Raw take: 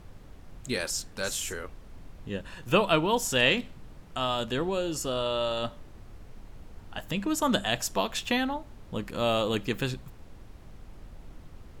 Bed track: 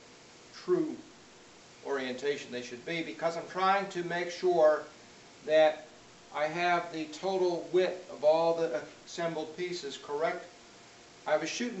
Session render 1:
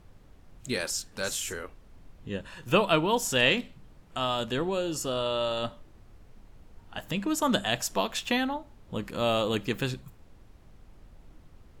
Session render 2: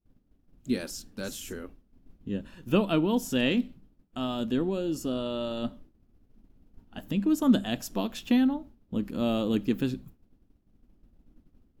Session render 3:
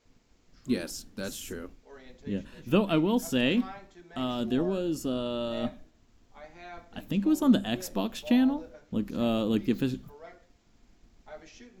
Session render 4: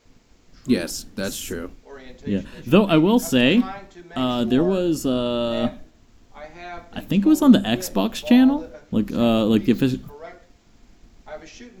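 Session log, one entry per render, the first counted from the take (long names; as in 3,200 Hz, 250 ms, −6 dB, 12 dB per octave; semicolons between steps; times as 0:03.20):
noise reduction from a noise print 6 dB
downward expander −42 dBFS; octave-band graphic EQ 125/250/500/1,000/2,000/4,000/8,000 Hz −4/+10/−4/−7/−7/−4/−9 dB
mix in bed track −17 dB
level +9 dB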